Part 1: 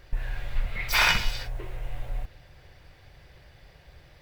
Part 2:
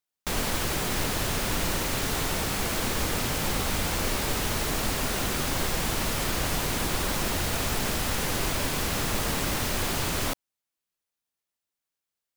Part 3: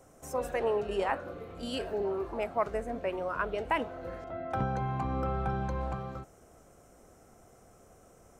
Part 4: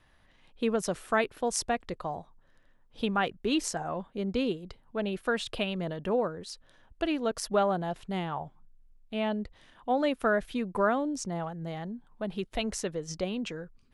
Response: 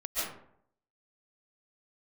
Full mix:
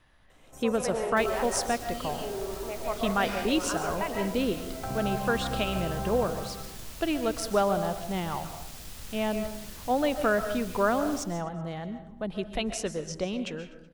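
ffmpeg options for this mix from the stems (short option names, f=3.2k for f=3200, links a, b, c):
-filter_complex "[0:a]adelay=2300,volume=-19dB[a];[1:a]acrossover=split=140|3000[b][c][d];[c]acompressor=threshold=-38dB:ratio=6[e];[b][e][d]amix=inputs=3:normalize=0,acrusher=bits=2:mode=log:mix=0:aa=0.000001,aeval=exprs='val(0)+0.0112*(sin(2*PI*60*n/s)+sin(2*PI*2*60*n/s)/2+sin(2*PI*3*60*n/s)/3+sin(2*PI*4*60*n/s)/4+sin(2*PI*5*60*n/s)/5)':c=same,adelay=900,volume=-16dB,asplit=2[f][g];[g]volume=-12dB[h];[2:a]adelay=300,volume=-7.5dB,asplit=2[i][j];[j]volume=-3dB[k];[3:a]volume=0dB,asplit=3[l][m][n];[m]volume=-15dB[o];[n]volume=-19dB[p];[4:a]atrim=start_sample=2205[q];[h][k][o]amix=inputs=3:normalize=0[r];[r][q]afir=irnorm=-1:irlink=0[s];[p]aecho=0:1:125|250|375|500|625|750|875|1000:1|0.55|0.303|0.166|0.0915|0.0503|0.0277|0.0152[t];[a][f][i][l][s][t]amix=inputs=6:normalize=0"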